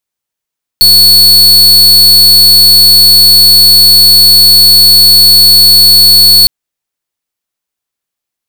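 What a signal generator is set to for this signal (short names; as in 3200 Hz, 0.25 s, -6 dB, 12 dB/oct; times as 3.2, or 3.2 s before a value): pulse 4420 Hz, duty 43% -3 dBFS 5.66 s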